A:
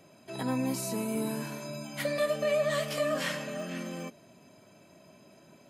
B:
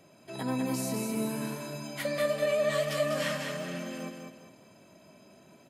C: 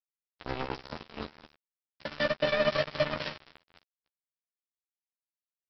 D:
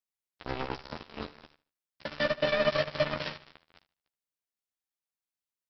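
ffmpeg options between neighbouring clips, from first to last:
-af "aecho=1:1:199|398|597|796:0.562|0.202|0.0729|0.0262,volume=-1dB"
-filter_complex "[0:a]aresample=11025,acrusher=bits=3:mix=0:aa=0.5,aresample=44100,asplit=2[a][b];[b]adelay=13,volume=-5dB[c];[a][c]amix=inputs=2:normalize=0"
-af "aecho=1:1:75|150|225:0.126|0.0403|0.0129"

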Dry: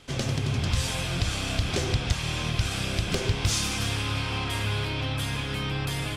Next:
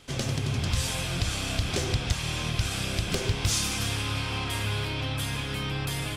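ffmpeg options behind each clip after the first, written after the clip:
-af "highshelf=f=8.3k:g=6.5,volume=-1.5dB"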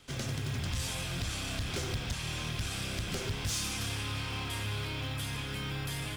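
-filter_complex "[0:a]acrossover=split=530|1500[a][b][c];[a]acrusher=samples=25:mix=1:aa=0.000001[d];[d][b][c]amix=inputs=3:normalize=0,asoftclip=type=tanh:threshold=-23dB,volume=-4.5dB"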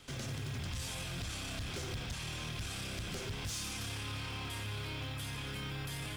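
-af "alimiter=level_in=11.5dB:limit=-24dB:level=0:latency=1,volume=-11.5dB,volume=1.5dB"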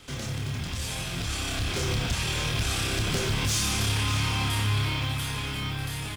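-filter_complex "[0:a]dynaudnorm=f=280:g=11:m=6dB,asplit=2[a][b];[b]adelay=28,volume=-5.5dB[c];[a][c]amix=inputs=2:normalize=0,aecho=1:1:593:0.266,volume=6dB"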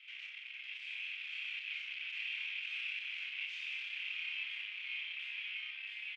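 -filter_complex "[0:a]asoftclip=type=tanh:threshold=-31.5dB,asuperpass=centerf=2500:order=4:qfactor=3.1,asplit=2[a][b];[b]adelay=41,volume=-6dB[c];[a][c]amix=inputs=2:normalize=0,volume=1.5dB"

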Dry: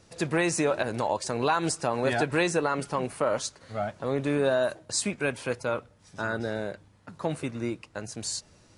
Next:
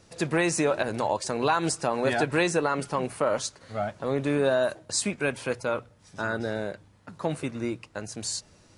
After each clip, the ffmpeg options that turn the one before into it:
-af "bandreject=f=60:t=h:w=6,bandreject=f=120:t=h:w=6,volume=1dB"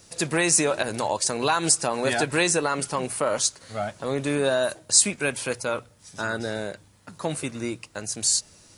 -af "crystalizer=i=3:c=0"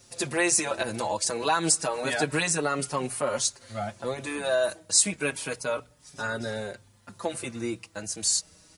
-filter_complex "[0:a]asplit=2[a][b];[b]adelay=5.2,afreqshift=-0.3[c];[a][c]amix=inputs=2:normalize=1"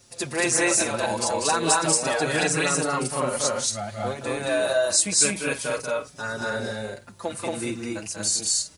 -af "aecho=1:1:189.5|227.4|277:0.562|1|0.282"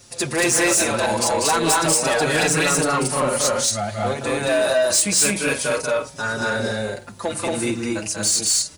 -af "asoftclip=type=tanh:threshold=-20.5dB,bandreject=f=62.05:t=h:w=4,bandreject=f=124.1:t=h:w=4,bandreject=f=186.15:t=h:w=4,bandreject=f=248.2:t=h:w=4,bandreject=f=310.25:t=h:w=4,bandreject=f=372.3:t=h:w=4,bandreject=f=434.35:t=h:w=4,bandreject=f=496.4:t=h:w=4,bandreject=f=558.45:t=h:w=4,bandreject=f=620.5:t=h:w=4,bandreject=f=682.55:t=h:w=4,bandreject=f=744.6:t=h:w=4,bandreject=f=806.65:t=h:w=4,bandreject=f=868.7:t=h:w=4,bandreject=f=930.75:t=h:w=4,volume=7.5dB"

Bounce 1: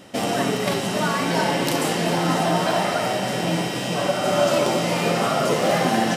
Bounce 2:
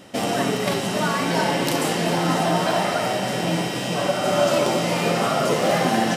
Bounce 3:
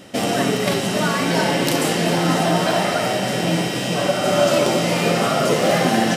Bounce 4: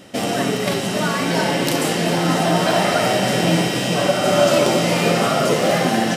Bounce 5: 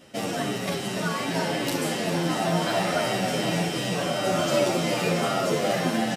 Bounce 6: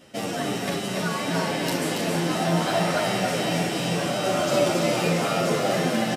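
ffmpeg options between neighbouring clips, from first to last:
-af anull
-af "equalizer=f=950:w=2:g=-4,volume=3.5dB"
-af "dynaudnorm=f=300:g=7:m=11.5dB,volume=-1dB"
-filter_complex "[0:a]asplit=2[a][b];[b]adelay=9.2,afreqshift=-2.7[c];[a][c]amix=inputs=2:normalize=1,volume=-4.5dB"
-af "aecho=1:1:280:0.596"

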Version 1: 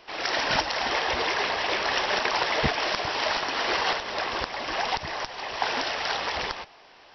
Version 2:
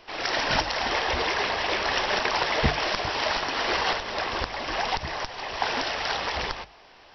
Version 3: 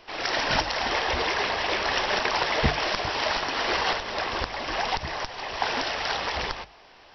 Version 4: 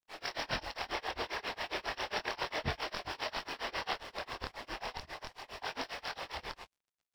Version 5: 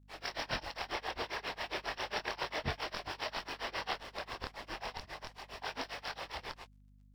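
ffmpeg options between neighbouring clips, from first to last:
-af "lowshelf=f=120:g=10,bandreject=f=50:t=h:w=6,bandreject=f=100:t=h:w=6,bandreject=f=150:t=h:w=6"
-af anull
-af "flanger=delay=22.5:depth=5.2:speed=0.34,aeval=exprs='sgn(val(0))*max(abs(val(0))-0.00422,0)':c=same,tremolo=f=7.4:d=0.97,volume=-5dB"
-af "aeval=exprs='val(0)+0.00112*(sin(2*PI*50*n/s)+sin(2*PI*2*50*n/s)/2+sin(2*PI*3*50*n/s)/3+sin(2*PI*4*50*n/s)/4+sin(2*PI*5*50*n/s)/5)':c=same,volume=-1dB"

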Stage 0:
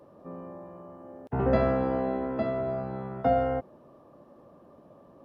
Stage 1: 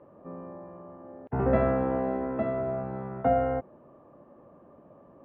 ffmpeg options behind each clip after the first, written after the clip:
-af "lowpass=f=2.5k:w=0.5412,lowpass=f=2.5k:w=1.3066"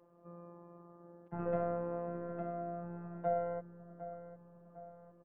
-filter_complex "[0:a]afftfilt=real='hypot(re,im)*cos(PI*b)':imag='0':win_size=1024:overlap=0.75,asplit=2[a][b];[b]adelay=754,lowpass=f=1.6k:p=1,volume=-11dB,asplit=2[c][d];[d]adelay=754,lowpass=f=1.6k:p=1,volume=0.54,asplit=2[e][f];[f]adelay=754,lowpass=f=1.6k:p=1,volume=0.54,asplit=2[g][h];[h]adelay=754,lowpass=f=1.6k:p=1,volume=0.54,asplit=2[i][j];[j]adelay=754,lowpass=f=1.6k:p=1,volume=0.54,asplit=2[k][l];[l]adelay=754,lowpass=f=1.6k:p=1,volume=0.54[m];[a][c][e][g][i][k][m]amix=inputs=7:normalize=0,volume=-8dB"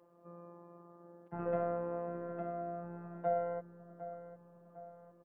-af "lowshelf=f=130:g=-8.5,volume=1dB"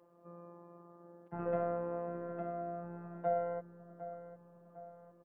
-af anull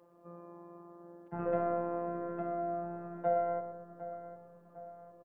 -filter_complex "[0:a]asplit=2[a][b];[b]adelay=119,lowpass=f=1.4k:p=1,volume=-8dB,asplit=2[c][d];[d]adelay=119,lowpass=f=1.4k:p=1,volume=0.48,asplit=2[e][f];[f]adelay=119,lowpass=f=1.4k:p=1,volume=0.48,asplit=2[g][h];[h]adelay=119,lowpass=f=1.4k:p=1,volume=0.48,asplit=2[i][j];[j]adelay=119,lowpass=f=1.4k:p=1,volume=0.48,asplit=2[k][l];[l]adelay=119,lowpass=f=1.4k:p=1,volume=0.48[m];[a][c][e][g][i][k][m]amix=inputs=7:normalize=0,volume=2.5dB"

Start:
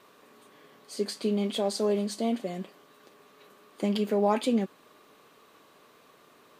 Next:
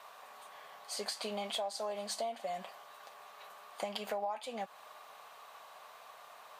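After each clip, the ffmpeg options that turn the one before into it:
-af "lowshelf=f=490:t=q:w=3:g=-14,acompressor=threshold=-37dB:ratio=10,volume=2.5dB"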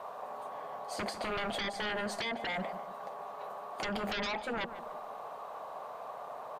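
-filter_complex "[0:a]acrossover=split=970[a][b];[a]aeval=exprs='0.0447*sin(PI/2*7.08*val(0)/0.0447)':c=same[c];[c][b]amix=inputs=2:normalize=0,asplit=2[d][e];[e]adelay=149,lowpass=f=1.5k:p=1,volume=-11.5dB,asplit=2[f][g];[g]adelay=149,lowpass=f=1.5k:p=1,volume=0.46,asplit=2[h][i];[i]adelay=149,lowpass=f=1.5k:p=1,volume=0.46,asplit=2[j][k];[k]adelay=149,lowpass=f=1.5k:p=1,volume=0.46,asplit=2[l][m];[m]adelay=149,lowpass=f=1.5k:p=1,volume=0.46[n];[d][f][h][j][l][n]amix=inputs=6:normalize=0,volume=-5dB"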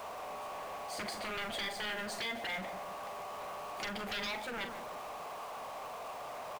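-filter_complex "[0:a]aeval=exprs='val(0)+0.5*0.00794*sgn(val(0))':c=same,asplit=2[a][b];[b]adelay=42,volume=-9dB[c];[a][c]amix=inputs=2:normalize=0,acrossover=split=1600[d][e];[d]asoftclip=type=tanh:threshold=-37dB[f];[f][e]amix=inputs=2:normalize=0,volume=-2.5dB"

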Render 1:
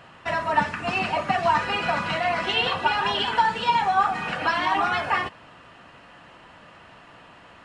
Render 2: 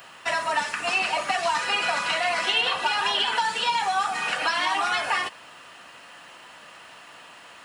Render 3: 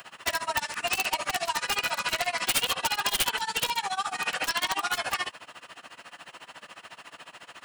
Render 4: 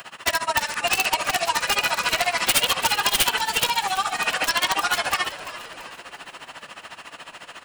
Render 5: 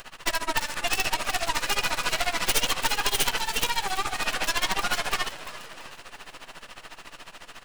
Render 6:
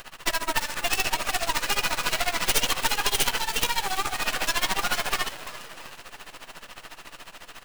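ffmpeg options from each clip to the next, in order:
-filter_complex "[0:a]acontrast=85,aemphasis=mode=production:type=riaa,acrossover=split=300|3100[a][b][c];[a]acompressor=threshold=-42dB:ratio=4[d];[b]acompressor=threshold=-16dB:ratio=4[e];[c]acompressor=threshold=-25dB:ratio=4[f];[d][e][f]amix=inputs=3:normalize=0,volume=-6dB"
-filter_complex "[0:a]acrossover=split=120|3000[a][b][c];[b]acompressor=threshold=-29dB:ratio=3[d];[a][d][c]amix=inputs=3:normalize=0,aeval=exprs='(mod(9.44*val(0)+1,2)-1)/9.44':c=same,tremolo=f=14:d=0.93,volume=3.5dB"
-filter_complex "[0:a]asplit=6[a][b][c][d][e][f];[b]adelay=337,afreqshift=-110,volume=-14dB[g];[c]adelay=674,afreqshift=-220,volume=-20dB[h];[d]adelay=1011,afreqshift=-330,volume=-26dB[i];[e]adelay=1348,afreqshift=-440,volume=-32.1dB[j];[f]adelay=1685,afreqshift=-550,volume=-38.1dB[k];[a][g][h][i][j][k]amix=inputs=6:normalize=0,volume=6dB"
-af "aeval=exprs='max(val(0),0)':c=same"
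-af "acrusher=bits=2:mode=log:mix=0:aa=0.000001"

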